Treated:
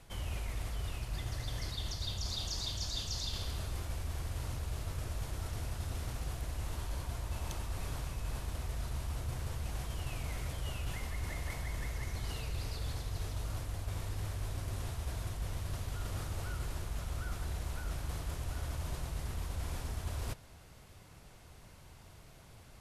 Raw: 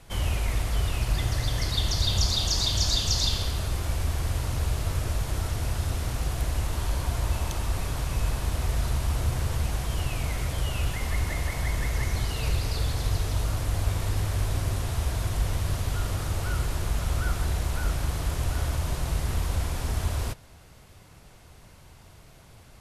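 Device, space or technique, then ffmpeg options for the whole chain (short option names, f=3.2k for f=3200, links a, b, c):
compression on the reversed sound: -af "areverse,acompressor=threshold=-30dB:ratio=6,areverse,volume=-4.5dB"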